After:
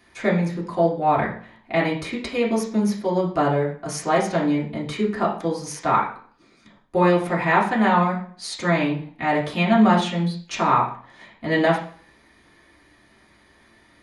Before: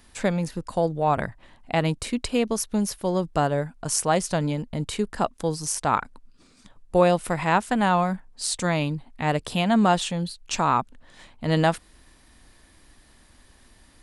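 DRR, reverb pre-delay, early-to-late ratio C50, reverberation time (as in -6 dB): -7.0 dB, 3 ms, 7.5 dB, 0.45 s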